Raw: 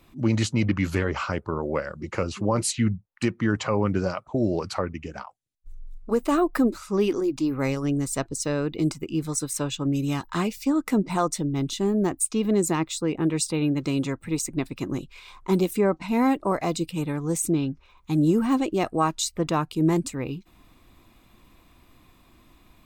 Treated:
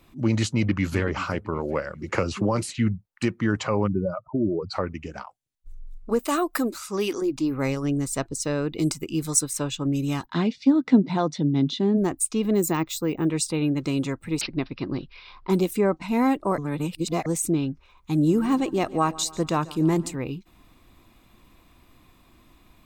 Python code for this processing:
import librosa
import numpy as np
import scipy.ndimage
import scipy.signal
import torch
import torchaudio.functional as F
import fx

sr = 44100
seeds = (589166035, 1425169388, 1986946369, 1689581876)

y = fx.echo_throw(x, sr, start_s=0.53, length_s=0.45, ms=380, feedback_pct=35, wet_db=-15.0)
y = fx.band_squash(y, sr, depth_pct=100, at=(2.12, 2.75))
y = fx.spec_expand(y, sr, power=2.3, at=(3.86, 4.73), fade=0.02)
y = fx.tilt_eq(y, sr, slope=2.5, at=(6.19, 7.22))
y = fx.high_shelf(y, sr, hz=4300.0, db=10.0, at=(8.76, 9.41))
y = fx.cabinet(y, sr, low_hz=140.0, low_slope=12, high_hz=4800.0, hz=(150.0, 250.0, 1200.0, 2600.0, 3600.0), db=(8, 9, -7, -4, 5), at=(10.25, 11.96), fade=0.02)
y = fx.resample_bad(y, sr, factor=2, down='none', up='hold', at=(12.55, 13.25))
y = fx.resample_bad(y, sr, factor=4, down='none', up='filtered', at=(14.41, 15.5))
y = fx.echo_feedback(y, sr, ms=142, feedback_pct=54, wet_db=-19.5, at=(18.16, 20.16))
y = fx.edit(y, sr, fx.reverse_span(start_s=16.58, length_s=0.68), tone=tone)